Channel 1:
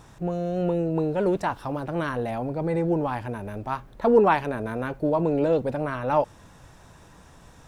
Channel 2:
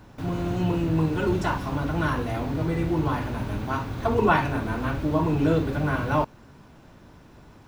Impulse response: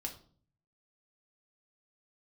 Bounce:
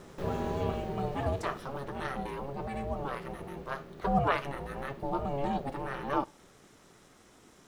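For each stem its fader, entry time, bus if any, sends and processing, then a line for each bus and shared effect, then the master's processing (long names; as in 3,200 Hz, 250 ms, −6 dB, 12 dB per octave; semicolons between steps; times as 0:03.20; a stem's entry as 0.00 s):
−5.0 dB, 0.00 s, send −16 dB, tilt shelving filter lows −4 dB, about 1,500 Hz
+1.0 dB, 0.00 s, no send, automatic ducking −15 dB, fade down 1.85 s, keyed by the first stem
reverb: on, RT60 0.50 s, pre-delay 3 ms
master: ring modulation 280 Hz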